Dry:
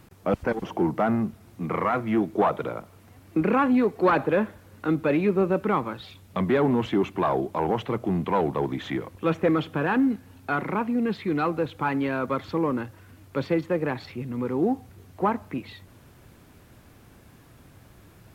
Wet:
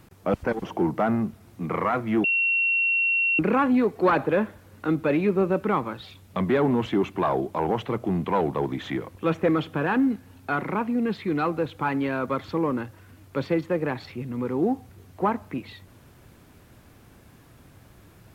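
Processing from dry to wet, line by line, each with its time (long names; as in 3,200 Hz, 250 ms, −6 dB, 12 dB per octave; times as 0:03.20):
0:02.24–0:03.39: beep over 2,730 Hz −19.5 dBFS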